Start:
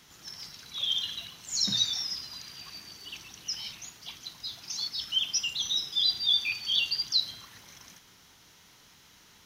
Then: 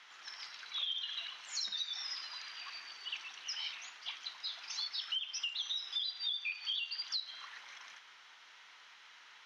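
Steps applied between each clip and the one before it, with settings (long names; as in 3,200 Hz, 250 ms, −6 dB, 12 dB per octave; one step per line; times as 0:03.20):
low-pass filter 2,600 Hz 12 dB per octave
downward compressor 12 to 1, threshold −41 dBFS, peak gain reduction 14.5 dB
high-pass filter 1,200 Hz 12 dB per octave
level +6.5 dB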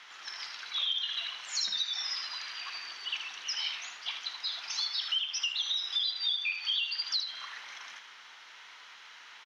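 single-tap delay 78 ms −8.5 dB
level +6 dB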